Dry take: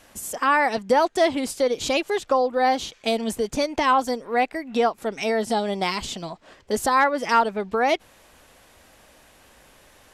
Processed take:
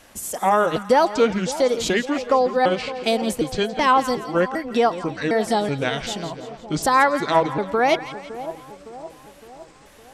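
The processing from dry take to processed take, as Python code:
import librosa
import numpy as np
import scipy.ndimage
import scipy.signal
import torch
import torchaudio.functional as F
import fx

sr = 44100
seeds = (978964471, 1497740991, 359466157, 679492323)

y = fx.pitch_trill(x, sr, semitones=-6.0, every_ms=379)
y = fx.echo_split(y, sr, split_hz=950.0, low_ms=561, high_ms=169, feedback_pct=52, wet_db=-13)
y = y * librosa.db_to_amplitude(2.5)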